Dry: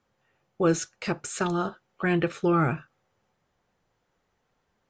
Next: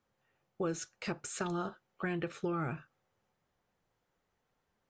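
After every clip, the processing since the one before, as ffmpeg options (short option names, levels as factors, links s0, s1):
-af "acompressor=threshold=0.0562:ratio=6,volume=0.473"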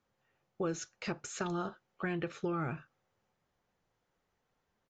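-af "aresample=16000,aresample=44100"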